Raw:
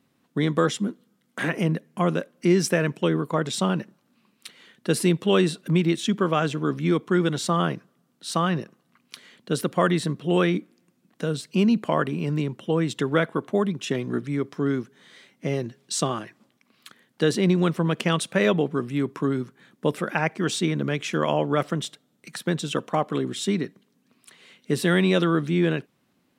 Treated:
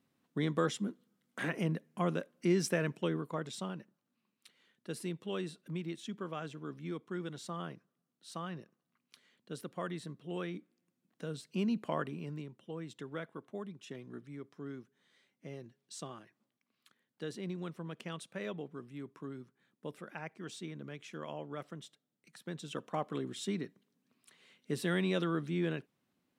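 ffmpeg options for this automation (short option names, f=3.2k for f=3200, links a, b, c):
-af "volume=4.5dB,afade=t=out:st=2.87:d=0.9:silence=0.375837,afade=t=in:st=10.49:d=1.44:silence=0.473151,afade=t=out:st=11.93:d=0.57:silence=0.398107,afade=t=in:st=22.37:d=0.65:silence=0.398107"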